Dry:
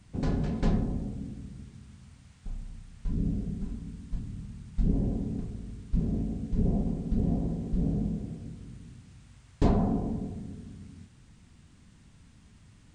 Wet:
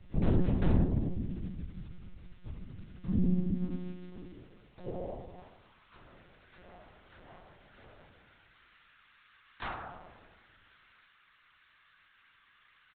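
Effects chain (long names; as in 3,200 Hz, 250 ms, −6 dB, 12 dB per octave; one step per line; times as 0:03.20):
ambience of single reflections 33 ms −8.5 dB, 50 ms −17.5 dB, 68 ms −17.5 dB
high-pass filter sweep 78 Hz → 1,400 Hz, 0:02.22–0:06.19
one-pitch LPC vocoder at 8 kHz 180 Hz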